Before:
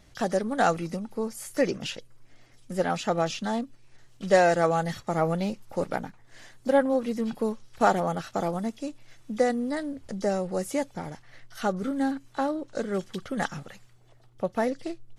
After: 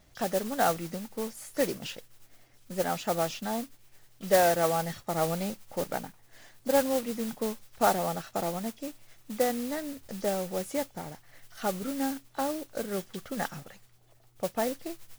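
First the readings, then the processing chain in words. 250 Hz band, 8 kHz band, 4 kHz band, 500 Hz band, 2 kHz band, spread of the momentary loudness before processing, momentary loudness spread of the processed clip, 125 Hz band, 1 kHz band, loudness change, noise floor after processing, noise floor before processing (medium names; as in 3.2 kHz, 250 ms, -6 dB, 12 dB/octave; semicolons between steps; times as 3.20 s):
-5.0 dB, +4.0 dB, 0.0 dB, -3.0 dB, -4.0 dB, 12 LU, 13 LU, -5.0 dB, -3.0 dB, -3.0 dB, -60 dBFS, -56 dBFS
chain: peaking EQ 680 Hz +3 dB; modulation noise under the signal 11 dB; trim -5 dB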